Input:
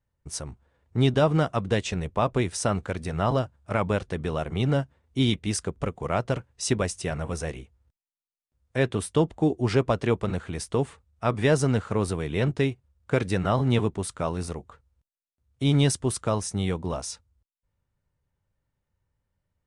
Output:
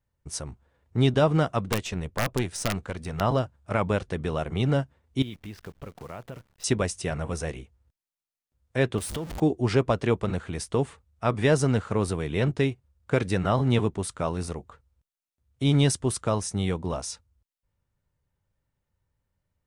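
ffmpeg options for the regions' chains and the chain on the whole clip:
-filter_complex "[0:a]asettb=1/sr,asplit=3[a][b][c];[a]atrim=end=1.654[d];[b]atrim=start=1.65:end=3.21,asetpts=PTS-STARTPTS,afade=t=in:d=0.004:c=qsin,afade=t=out:st=1.556:d=0.004:c=qsin,aeval=exprs='(mod(5.01*val(0)+1,2)-1)/5.01':c=same,aeval=exprs='(tanh(7.08*val(0)+0.55)-tanh(0.55))/7.08':c=same[e];[c]atrim=start=3.206[f];[d][e]acrossfade=d=0.004:c1=hsin:c2=qsin[g];[g][f]acrossfade=d=0.004:c1=qsin:c2=hsin,asettb=1/sr,asplit=3[h][i][j];[h]atrim=end=5.224[k];[i]atrim=start=5.22:end=6.64,asetpts=PTS-STARTPTS,afade=t=in:d=0.004:c=qsin,afade=t=out:st=1.416:d=0.004:c=qsin,lowpass=f=3.6k:w=0.5412,lowpass=f=3.6k:w=1.3066,acrusher=bits=8:dc=4:mix=0:aa=0.000001,acompressor=threshold=-41dB:ratio=2.5:attack=3.2:release=140:knee=1:detection=peak[l];[j]atrim=start=6.636[m];[k][l]acrossfade=d=0.004:c1=hsin:c2=qsin[n];[n][m]acrossfade=d=0.004:c1=qsin:c2=hsin,asettb=1/sr,asplit=3[o][p][q];[o]atrim=end=8.984[r];[p]atrim=start=8.98:end=9.4,asetpts=PTS-STARTPTS,afade=t=in:d=0.004:c=qsin,afade=t=out:st=0.416:d=0.004:c=qsin,aeval=exprs='val(0)+0.5*0.0376*sgn(val(0))':c=same,acompressor=threshold=-31dB:ratio=4:attack=3.2:release=140:knee=1:detection=peak[s];[q]atrim=start=9.396[t];[r][s]acrossfade=d=0.004:c1=hsin:c2=qsin[u];[u][t]acrossfade=d=0.004:c1=qsin:c2=hsin"

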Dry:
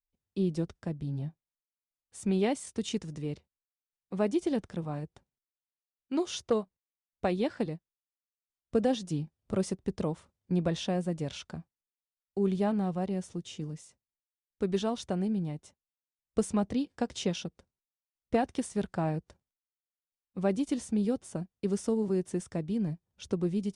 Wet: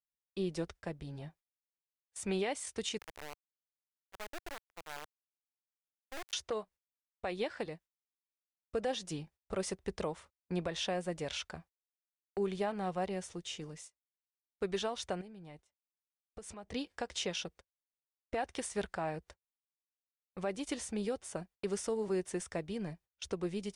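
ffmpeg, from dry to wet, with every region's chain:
-filter_complex "[0:a]asettb=1/sr,asplit=3[a][b][c];[a]atrim=end=2.984[d];[b]atrim=start=2.98:end=6.33,asetpts=PTS-STARTPTS,afade=t=in:d=0.004:c=qsin,afade=t=out:st=3.346:d=0.004:c=qsin,highshelf=f=3.6k:g=-9.5,acompressor=threshold=-47dB:ratio=2.5:attack=3.2:release=140:knee=1:detection=peak,acrusher=bits=4:dc=4:mix=0:aa=0.000001[e];[c]atrim=start=6.326[f];[d][e]acrossfade=d=0.004:c1=hsin:c2=qsin[g];[g][f]acrossfade=d=0.004:c1=qsin:c2=hsin,asettb=1/sr,asplit=3[h][i][j];[h]atrim=end=15.214[k];[i]atrim=start=15.21:end=16.73,asetpts=PTS-STARTPTS,afade=t=in:d=0.004:c=qsin,afade=t=out:st=1.516:d=0.004:c=qsin,highshelf=f=6.1k:g=-3,acompressor=threshold=-40dB:ratio=10:attack=3.2:release=140:knee=1:detection=peak[l];[j]atrim=start=16.726[m];[k][l]acrossfade=d=0.004:c1=hsin:c2=qsin[n];[n][m]acrossfade=d=0.004:c1=qsin:c2=hsin,agate=range=-24dB:threshold=-50dB:ratio=16:detection=peak,equalizer=f=125:t=o:w=1:g=-12,equalizer=f=250:t=o:w=1:g=-10,equalizer=f=2k:t=o:w=1:g=4,alimiter=level_in=3.5dB:limit=-24dB:level=0:latency=1:release=206,volume=-3.5dB,volume=2dB"

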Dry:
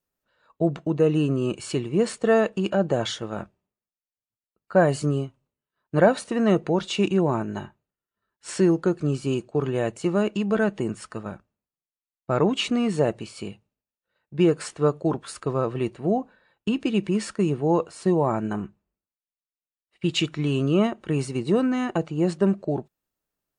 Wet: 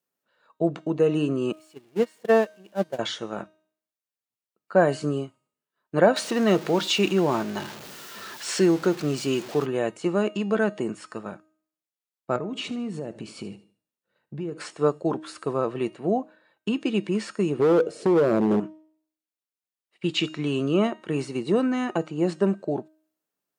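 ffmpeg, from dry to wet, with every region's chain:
-filter_complex "[0:a]asettb=1/sr,asplit=3[a][b][c];[a]atrim=end=1.524[d];[b]atrim=start=1.52:end=2.99,asetpts=PTS-STARTPTS,afade=t=in:d=0.004:c=qsin,afade=t=out:st=1.466:d=0.004:c=qsin,aeval=exprs='val(0)+0.5*0.0501*sgn(val(0))':c=same,bandreject=f=1.3k:w=10,agate=range=-30dB:threshold=-18dB:ratio=16:release=100:detection=peak[e];[c]atrim=start=2.986[f];[d][e]acrossfade=d=0.004:c1=hsin:c2=qsin[g];[g][f]acrossfade=d=0.004:c1=qsin:c2=hsin,asettb=1/sr,asplit=3[h][i][j];[h]atrim=end=6.164[k];[i]atrim=start=6.16:end=9.66,asetpts=PTS-STARTPTS,afade=t=in:d=0.004:c=qsin,afade=t=out:st=3.496:d=0.004:c=qsin,aeval=exprs='val(0)+0.5*0.02*sgn(val(0))':c=same,aemphasis=mode=production:type=75kf[l];[j]atrim=start=9.656[m];[k][l]acrossfade=d=0.004:c1=hsin:c2=qsin[n];[n][m]acrossfade=d=0.004:c1=qsin:c2=hsin,asettb=1/sr,asplit=3[o][p][q];[o]atrim=end=12.364[r];[p]atrim=start=12.36:end=14.58,asetpts=PTS-STARTPTS,afade=t=in:d=0.004:c=qsin,afade=t=out:st=2.216:d=0.004:c=qsin,lowshelf=f=340:g=12,acompressor=threshold=-28dB:ratio=6:attack=3.2:release=140:knee=1:detection=peak,aecho=1:1:75|150|225:0.141|0.0509|0.0183,atrim=end_sample=97902[s];[q]atrim=start=14.576[t];[r][s]acrossfade=d=0.004:c1=hsin:c2=qsin[u];[u][t]acrossfade=d=0.004:c1=qsin:c2=hsin,asettb=1/sr,asplit=3[v][w][x];[v]atrim=end=17.594[y];[w]atrim=start=17.59:end=18.6,asetpts=PTS-STARTPTS,afade=t=in:d=0.004:c=qsin,afade=t=out:st=1.006:d=0.004:c=qsin,lowshelf=f=700:t=q:w=3:g=11.5,acompressor=threshold=-12dB:ratio=10:attack=3.2:release=140:knee=1:detection=peak,asoftclip=type=hard:threshold=-15dB[z];[x]atrim=start=18.596[aa];[y][z]acrossfade=d=0.004:c1=hsin:c2=qsin[ab];[ab][aa]acrossfade=d=0.004:c1=qsin:c2=hsin,bandreject=f=312.9:t=h:w=4,bandreject=f=625.8:t=h:w=4,bandreject=f=938.7:t=h:w=4,bandreject=f=1.2516k:t=h:w=4,bandreject=f=1.5645k:t=h:w=4,bandreject=f=1.8774k:t=h:w=4,bandreject=f=2.1903k:t=h:w=4,bandreject=f=2.5032k:t=h:w=4,bandreject=f=2.8161k:t=h:w=4,bandreject=f=3.129k:t=h:w=4,bandreject=f=3.4419k:t=h:w=4,bandreject=f=3.7548k:t=h:w=4,bandreject=f=4.0677k:t=h:w=4,bandreject=f=4.3806k:t=h:w=4,bandreject=f=4.6935k:t=h:w=4,bandreject=f=5.0064k:t=h:w=4,bandreject=f=5.3193k:t=h:w=4,bandreject=f=5.6322k:t=h:w=4,bandreject=f=5.9451k:t=h:w=4,bandreject=f=6.258k:t=h:w=4,bandreject=f=6.5709k:t=h:w=4,bandreject=f=6.8838k:t=h:w=4,bandreject=f=7.1967k:t=h:w=4,bandreject=f=7.5096k:t=h:w=4,bandreject=f=7.8225k:t=h:w=4,bandreject=f=8.1354k:t=h:w=4,bandreject=f=8.4483k:t=h:w=4,bandreject=f=8.7612k:t=h:w=4,bandreject=f=9.0741k:t=h:w=4,bandreject=f=9.387k:t=h:w=4,bandreject=f=9.6999k:t=h:w=4,bandreject=f=10.0128k:t=h:w=4,bandreject=f=10.3257k:t=h:w=4,bandreject=f=10.6386k:t=h:w=4,bandreject=f=10.9515k:t=h:w=4,bandreject=f=11.2644k:t=h:w=4,bandreject=f=11.5773k:t=h:w=4,bandreject=f=11.8902k:t=h:w=4,acrossover=split=5900[ac][ad];[ad]acompressor=threshold=-48dB:ratio=4:attack=1:release=60[ae];[ac][ae]amix=inputs=2:normalize=0,highpass=190"

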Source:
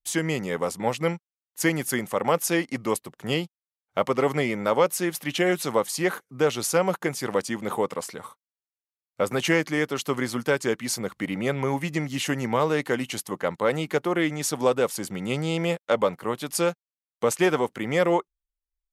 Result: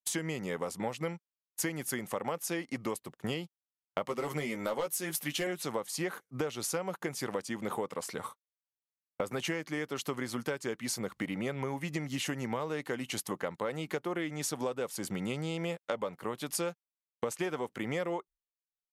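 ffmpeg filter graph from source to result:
-filter_complex "[0:a]asettb=1/sr,asplit=3[a][b][c];[a]atrim=end=4.084[d];[b]atrim=start=4.08:end=5.47,asetpts=PTS-STARTPTS,afade=t=in:d=0.004:c=qsin,afade=t=out:st=1.386:d=0.004:c=qsin,aemphasis=mode=production:type=cd,volume=14dB,asoftclip=hard,volume=-14dB,asplit=2[e][f];[f]adelay=13,volume=-5dB[g];[e][g]amix=inputs=2:normalize=0,atrim=end_sample=61299[h];[c]atrim=start=5.466[i];[d][h]acrossfade=d=0.004:c1=hsin:c2=qsin[j];[j][i]acrossfade=d=0.004:c1=qsin:c2=hsin,agate=range=-33dB:threshold=-38dB:ratio=3:detection=peak,acompressor=threshold=-34dB:ratio=6,volume=2dB"

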